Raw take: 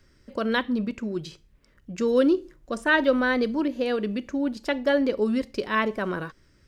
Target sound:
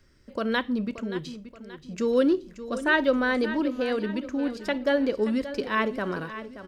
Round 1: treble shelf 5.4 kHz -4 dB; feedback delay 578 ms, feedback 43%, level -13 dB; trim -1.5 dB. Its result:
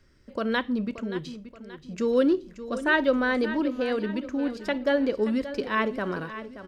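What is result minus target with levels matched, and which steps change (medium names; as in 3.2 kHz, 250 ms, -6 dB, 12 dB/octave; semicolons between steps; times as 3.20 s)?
8 kHz band -2.5 dB
remove: treble shelf 5.4 kHz -4 dB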